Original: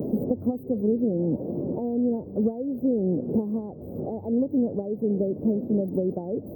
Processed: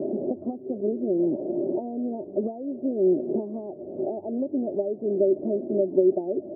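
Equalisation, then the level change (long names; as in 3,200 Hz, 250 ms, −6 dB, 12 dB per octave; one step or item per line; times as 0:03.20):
pair of resonant band-passes 480 Hz, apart 0.7 octaves
+9.0 dB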